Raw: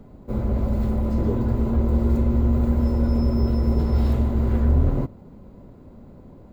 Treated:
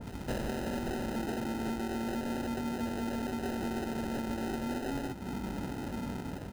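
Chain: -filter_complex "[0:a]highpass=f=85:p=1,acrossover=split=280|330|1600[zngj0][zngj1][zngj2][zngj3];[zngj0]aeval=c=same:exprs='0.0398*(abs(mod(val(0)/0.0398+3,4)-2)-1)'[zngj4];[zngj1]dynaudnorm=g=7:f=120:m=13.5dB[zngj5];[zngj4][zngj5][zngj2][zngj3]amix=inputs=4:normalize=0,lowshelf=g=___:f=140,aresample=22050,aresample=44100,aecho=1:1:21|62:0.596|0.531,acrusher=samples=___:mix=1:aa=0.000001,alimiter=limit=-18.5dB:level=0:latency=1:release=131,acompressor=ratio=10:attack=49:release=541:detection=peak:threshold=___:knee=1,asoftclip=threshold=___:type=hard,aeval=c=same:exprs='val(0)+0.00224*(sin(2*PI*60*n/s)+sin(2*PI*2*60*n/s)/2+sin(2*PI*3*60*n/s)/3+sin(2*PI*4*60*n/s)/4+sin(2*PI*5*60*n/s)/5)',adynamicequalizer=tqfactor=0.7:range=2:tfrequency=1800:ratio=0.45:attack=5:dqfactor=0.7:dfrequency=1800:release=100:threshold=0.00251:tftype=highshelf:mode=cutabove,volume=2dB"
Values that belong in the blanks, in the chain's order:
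2.5, 39, -34dB, -31.5dB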